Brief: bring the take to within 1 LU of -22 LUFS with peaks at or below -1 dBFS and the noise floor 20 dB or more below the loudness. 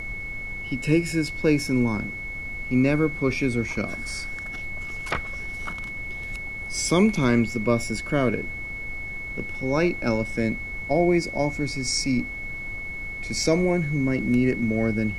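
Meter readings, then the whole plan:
steady tone 2.2 kHz; tone level -32 dBFS; noise floor -34 dBFS; noise floor target -45 dBFS; loudness -25.0 LUFS; peak level -8.0 dBFS; loudness target -22.0 LUFS
-> band-stop 2.2 kHz, Q 30; noise print and reduce 11 dB; trim +3 dB

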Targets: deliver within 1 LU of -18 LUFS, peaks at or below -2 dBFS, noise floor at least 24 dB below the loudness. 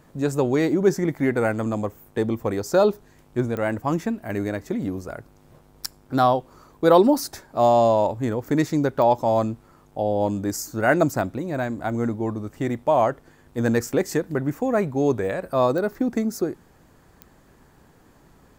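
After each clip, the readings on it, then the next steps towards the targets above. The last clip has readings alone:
clicks found 4; loudness -23.0 LUFS; peak level -3.5 dBFS; loudness target -18.0 LUFS
-> de-click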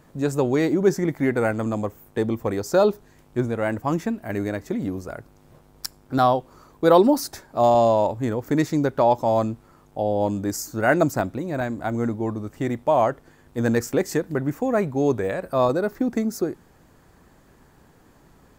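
clicks found 0; loudness -23.0 LUFS; peak level -3.5 dBFS; loudness target -18.0 LUFS
-> trim +5 dB; peak limiter -2 dBFS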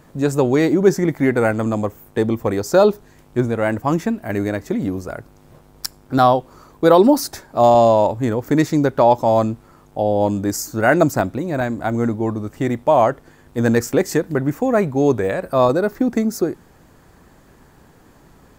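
loudness -18.0 LUFS; peak level -2.0 dBFS; noise floor -50 dBFS

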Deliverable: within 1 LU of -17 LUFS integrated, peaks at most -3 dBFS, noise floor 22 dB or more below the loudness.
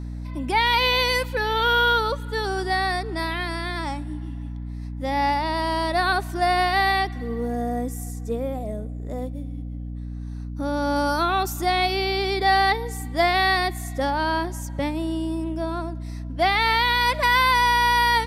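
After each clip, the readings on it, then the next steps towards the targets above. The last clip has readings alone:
hum 60 Hz; highest harmonic 300 Hz; hum level -30 dBFS; loudness -22.5 LUFS; peak level -9.5 dBFS; loudness target -17.0 LUFS
-> de-hum 60 Hz, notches 5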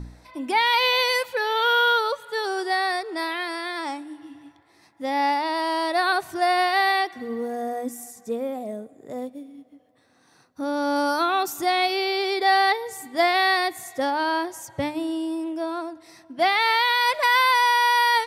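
hum not found; loudness -22.5 LUFS; peak level -10.5 dBFS; loudness target -17.0 LUFS
-> trim +5.5 dB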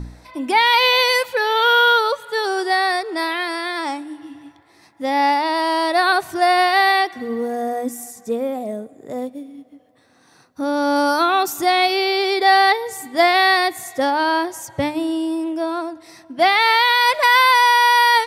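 loudness -17.0 LUFS; peak level -5.0 dBFS; noise floor -54 dBFS

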